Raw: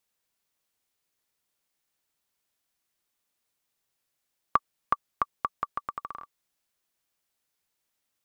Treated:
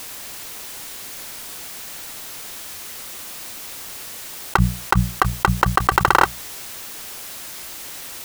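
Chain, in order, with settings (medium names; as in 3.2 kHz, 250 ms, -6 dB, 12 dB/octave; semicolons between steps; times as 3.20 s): cycle switcher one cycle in 3, inverted; hum notches 60/120/180 Hz; level flattener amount 100%; trim +6 dB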